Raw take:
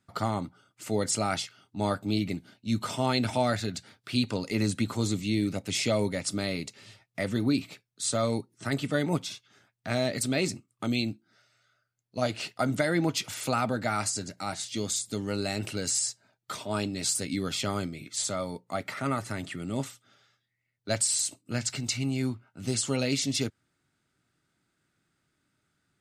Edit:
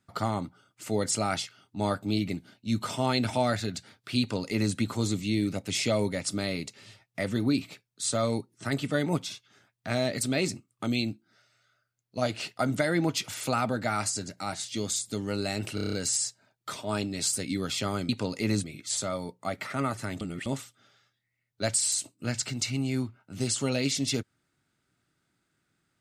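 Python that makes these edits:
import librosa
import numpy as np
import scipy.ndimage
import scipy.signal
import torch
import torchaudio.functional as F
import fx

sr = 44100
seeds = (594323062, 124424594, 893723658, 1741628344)

y = fx.edit(x, sr, fx.duplicate(start_s=4.2, length_s=0.55, to_s=17.91),
    fx.stutter(start_s=15.75, slice_s=0.03, count=7),
    fx.reverse_span(start_s=19.48, length_s=0.25), tone=tone)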